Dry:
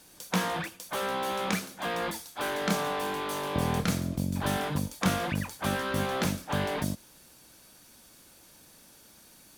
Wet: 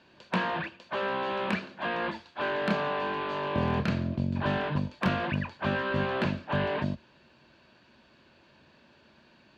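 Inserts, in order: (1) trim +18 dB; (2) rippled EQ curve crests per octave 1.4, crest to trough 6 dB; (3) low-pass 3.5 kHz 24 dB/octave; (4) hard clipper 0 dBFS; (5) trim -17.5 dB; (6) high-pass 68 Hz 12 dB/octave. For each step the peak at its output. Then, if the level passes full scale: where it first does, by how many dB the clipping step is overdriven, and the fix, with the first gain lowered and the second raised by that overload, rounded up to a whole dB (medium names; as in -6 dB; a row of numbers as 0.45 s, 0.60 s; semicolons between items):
+5.5 dBFS, +6.0 dBFS, +5.5 dBFS, 0.0 dBFS, -17.5 dBFS, -14.5 dBFS; step 1, 5.5 dB; step 1 +12 dB, step 5 -11.5 dB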